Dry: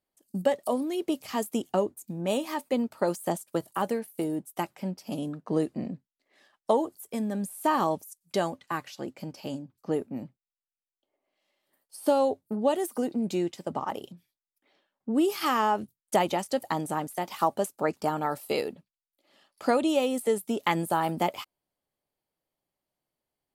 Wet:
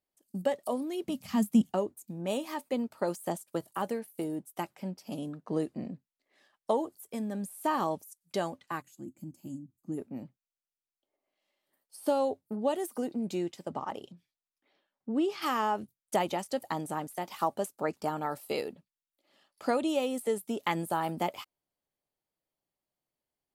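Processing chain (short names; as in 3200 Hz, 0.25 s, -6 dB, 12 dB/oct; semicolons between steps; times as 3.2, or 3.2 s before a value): 1.04–1.71 resonant low shelf 270 Hz +9.5 dB, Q 3; 8.82–9.98 spectral gain 360–6300 Hz -18 dB; 13.69–15.41 LPF 9700 Hz -> 4700 Hz 12 dB/oct; gain -4.5 dB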